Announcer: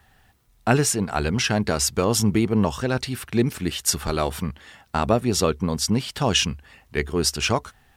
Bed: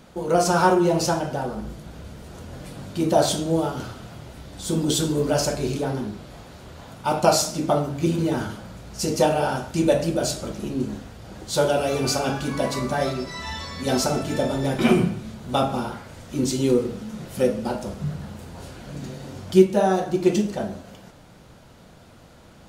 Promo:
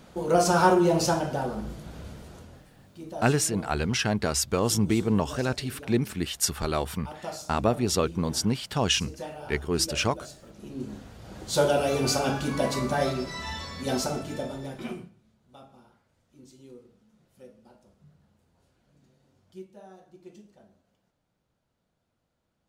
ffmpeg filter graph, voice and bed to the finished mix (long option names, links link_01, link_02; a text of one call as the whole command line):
ffmpeg -i stem1.wav -i stem2.wav -filter_complex "[0:a]adelay=2550,volume=-4dB[link_01];[1:a]volume=15dB,afade=type=out:start_time=2.09:duration=0.58:silence=0.141254,afade=type=in:start_time=10.48:duration=1.02:silence=0.141254,afade=type=out:start_time=13.29:duration=1.81:silence=0.0446684[link_02];[link_01][link_02]amix=inputs=2:normalize=0" out.wav